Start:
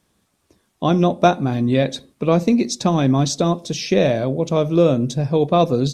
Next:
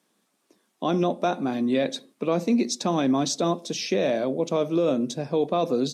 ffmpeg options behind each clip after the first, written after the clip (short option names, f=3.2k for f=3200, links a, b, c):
-af "highpass=f=200:w=0.5412,highpass=f=200:w=1.3066,alimiter=limit=-10.5dB:level=0:latency=1:release=22,volume=-3.5dB"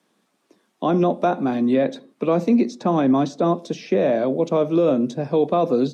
-filter_complex "[0:a]highshelf=f=5.6k:g=-9.5,acrossover=split=230|870|1900[a][b][c][d];[d]acompressor=threshold=-47dB:ratio=6[e];[a][b][c][e]amix=inputs=4:normalize=0,volume=5dB"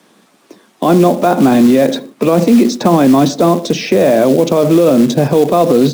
-af "acrusher=bits=5:mode=log:mix=0:aa=0.000001,alimiter=level_in=18.5dB:limit=-1dB:release=50:level=0:latency=1,volume=-1dB"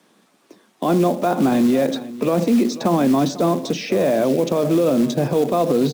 -af "aecho=1:1:495:0.141,volume=-8dB"